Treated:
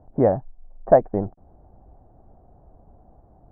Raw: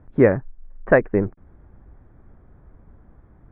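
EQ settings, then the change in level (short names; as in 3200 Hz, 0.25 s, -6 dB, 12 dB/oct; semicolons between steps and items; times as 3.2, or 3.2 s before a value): dynamic EQ 420 Hz, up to -6 dB, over -29 dBFS, Q 1.4; synth low-pass 730 Hz, resonance Q 4.9; -3.5 dB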